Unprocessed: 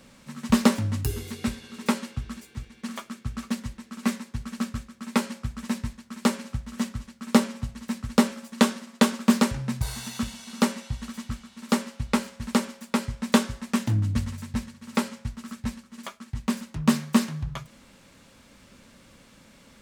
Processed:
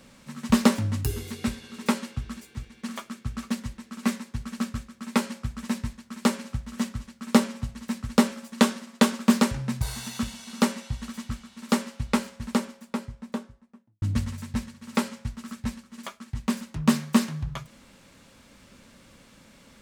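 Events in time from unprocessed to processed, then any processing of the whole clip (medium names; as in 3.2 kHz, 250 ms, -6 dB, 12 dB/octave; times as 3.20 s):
12.04–14.02 s: studio fade out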